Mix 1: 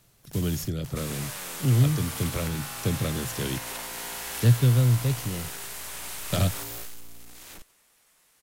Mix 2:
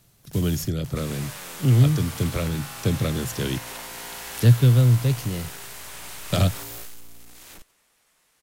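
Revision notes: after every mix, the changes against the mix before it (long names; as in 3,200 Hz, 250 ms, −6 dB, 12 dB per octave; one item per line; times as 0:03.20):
speech +4.0 dB
second sound: add high-shelf EQ 8,500 Hz −6 dB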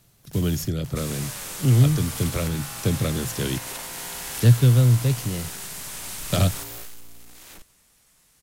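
second sound: add bass and treble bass +13 dB, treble +7 dB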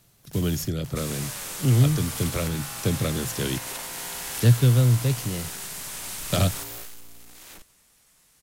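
master: add low-shelf EQ 200 Hz −3 dB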